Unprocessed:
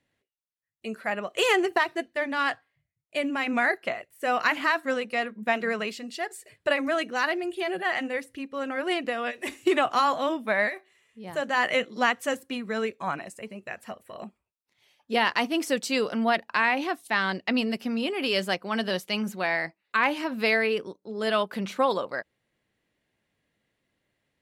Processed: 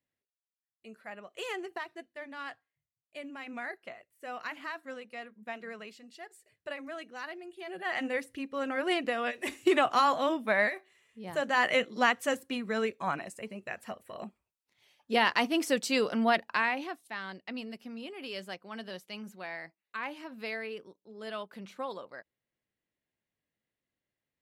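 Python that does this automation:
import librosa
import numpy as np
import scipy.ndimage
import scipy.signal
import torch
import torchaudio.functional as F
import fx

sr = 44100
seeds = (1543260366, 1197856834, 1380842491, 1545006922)

y = fx.gain(x, sr, db=fx.line((7.58, -15.0), (8.06, -2.0), (16.45, -2.0), (17.13, -14.0)))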